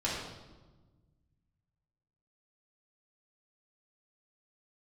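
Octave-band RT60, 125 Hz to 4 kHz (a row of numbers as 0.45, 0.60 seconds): 2.5, 1.9, 1.4, 1.2, 0.90, 0.90 seconds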